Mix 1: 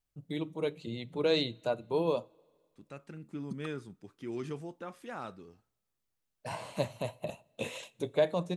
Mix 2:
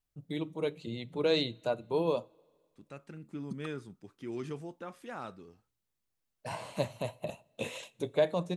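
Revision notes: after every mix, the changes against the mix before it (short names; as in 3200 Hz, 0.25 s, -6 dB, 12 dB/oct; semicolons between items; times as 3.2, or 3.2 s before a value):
second voice: send off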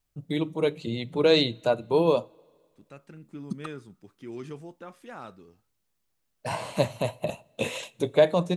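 first voice +8.0 dB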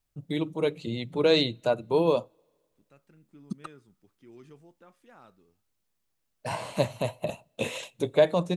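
first voice: send -9.5 dB; second voice -12.0 dB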